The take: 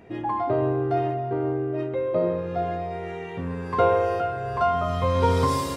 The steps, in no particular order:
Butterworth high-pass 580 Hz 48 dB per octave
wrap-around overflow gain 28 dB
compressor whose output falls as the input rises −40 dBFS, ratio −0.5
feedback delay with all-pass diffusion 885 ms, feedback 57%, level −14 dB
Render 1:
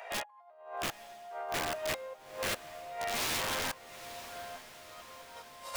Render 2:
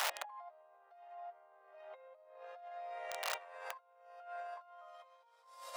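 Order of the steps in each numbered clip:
Butterworth high-pass, then compressor whose output falls as the input rises, then wrap-around overflow, then feedback delay with all-pass diffusion
feedback delay with all-pass diffusion, then compressor whose output falls as the input rises, then wrap-around overflow, then Butterworth high-pass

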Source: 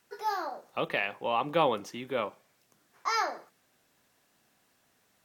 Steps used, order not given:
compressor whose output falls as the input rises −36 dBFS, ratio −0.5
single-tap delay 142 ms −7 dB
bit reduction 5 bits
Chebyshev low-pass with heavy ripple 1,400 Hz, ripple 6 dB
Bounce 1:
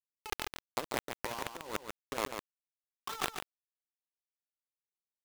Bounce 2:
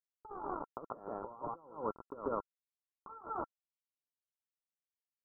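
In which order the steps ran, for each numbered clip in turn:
Chebyshev low-pass with heavy ripple, then bit reduction, then compressor whose output falls as the input rises, then single-tap delay
bit reduction, then single-tap delay, then compressor whose output falls as the input rises, then Chebyshev low-pass with heavy ripple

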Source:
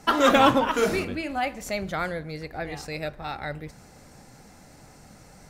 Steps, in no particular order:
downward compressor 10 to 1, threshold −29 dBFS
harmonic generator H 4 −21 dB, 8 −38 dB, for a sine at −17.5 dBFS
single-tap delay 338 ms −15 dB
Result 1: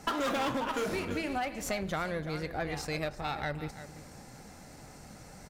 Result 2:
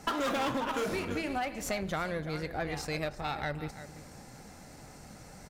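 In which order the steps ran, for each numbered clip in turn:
harmonic generator, then single-tap delay, then downward compressor
single-tap delay, then harmonic generator, then downward compressor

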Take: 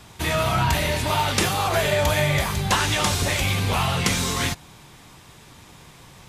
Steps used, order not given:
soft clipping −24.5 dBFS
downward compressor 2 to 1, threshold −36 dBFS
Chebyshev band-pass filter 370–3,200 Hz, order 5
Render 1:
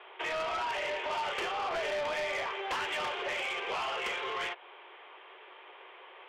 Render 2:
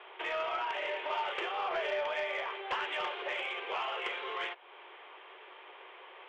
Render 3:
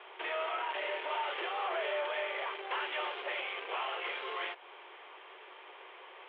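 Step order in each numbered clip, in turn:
Chebyshev band-pass filter, then soft clipping, then downward compressor
downward compressor, then Chebyshev band-pass filter, then soft clipping
soft clipping, then downward compressor, then Chebyshev band-pass filter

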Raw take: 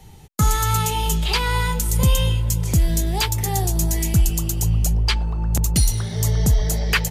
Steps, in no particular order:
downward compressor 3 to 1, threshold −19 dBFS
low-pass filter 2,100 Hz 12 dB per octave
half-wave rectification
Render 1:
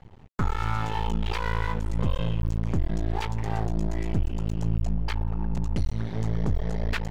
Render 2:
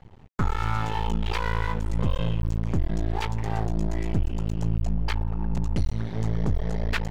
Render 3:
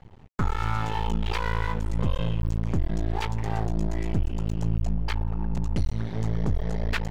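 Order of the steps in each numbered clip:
downward compressor, then low-pass filter, then half-wave rectification
low-pass filter, then half-wave rectification, then downward compressor
low-pass filter, then downward compressor, then half-wave rectification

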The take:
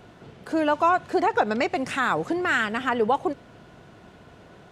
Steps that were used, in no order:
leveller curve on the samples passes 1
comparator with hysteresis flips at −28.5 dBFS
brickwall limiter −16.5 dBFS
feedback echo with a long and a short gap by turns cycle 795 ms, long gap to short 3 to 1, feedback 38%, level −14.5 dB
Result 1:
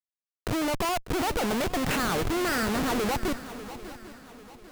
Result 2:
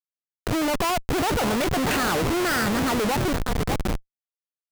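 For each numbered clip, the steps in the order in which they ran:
brickwall limiter, then leveller curve on the samples, then comparator with hysteresis, then feedback echo with a long and a short gap by turns
leveller curve on the samples, then feedback echo with a long and a short gap by turns, then comparator with hysteresis, then brickwall limiter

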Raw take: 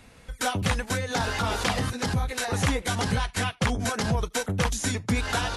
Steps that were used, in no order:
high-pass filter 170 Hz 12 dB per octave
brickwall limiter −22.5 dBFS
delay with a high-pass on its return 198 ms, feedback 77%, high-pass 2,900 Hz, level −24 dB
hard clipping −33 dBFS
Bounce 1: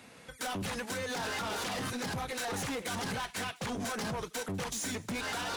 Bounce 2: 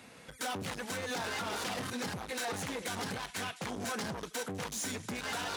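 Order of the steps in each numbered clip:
high-pass filter, then brickwall limiter, then hard clipping, then delay with a high-pass on its return
delay with a high-pass on its return, then brickwall limiter, then hard clipping, then high-pass filter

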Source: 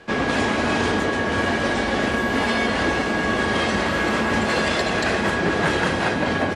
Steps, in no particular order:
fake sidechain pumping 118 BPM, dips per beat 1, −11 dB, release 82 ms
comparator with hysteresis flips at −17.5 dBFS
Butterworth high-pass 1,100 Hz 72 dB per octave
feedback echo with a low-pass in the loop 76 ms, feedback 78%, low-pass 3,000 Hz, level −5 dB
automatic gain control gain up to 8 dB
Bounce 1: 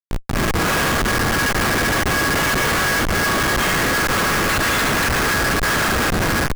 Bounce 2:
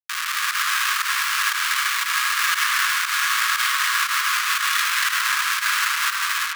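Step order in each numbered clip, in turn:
Butterworth high-pass, then automatic gain control, then feedback echo with a low-pass in the loop, then fake sidechain pumping, then comparator with hysteresis
automatic gain control, then comparator with hysteresis, then feedback echo with a low-pass in the loop, then fake sidechain pumping, then Butterworth high-pass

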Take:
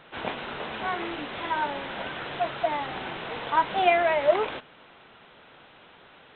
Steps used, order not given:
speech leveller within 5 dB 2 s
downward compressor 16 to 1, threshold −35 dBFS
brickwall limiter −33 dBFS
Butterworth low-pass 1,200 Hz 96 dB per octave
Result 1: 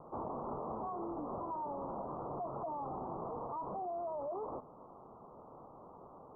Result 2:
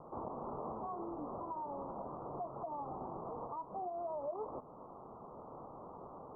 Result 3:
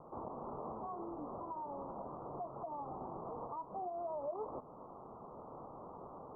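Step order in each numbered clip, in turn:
Butterworth low-pass, then brickwall limiter, then speech leveller, then downward compressor
downward compressor, then brickwall limiter, then Butterworth low-pass, then speech leveller
downward compressor, then brickwall limiter, then speech leveller, then Butterworth low-pass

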